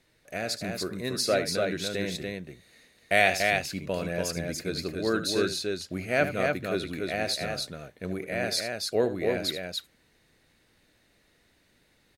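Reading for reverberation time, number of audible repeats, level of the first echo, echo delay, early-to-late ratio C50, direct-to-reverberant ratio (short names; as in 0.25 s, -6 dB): none, 2, -11.5 dB, 76 ms, none, none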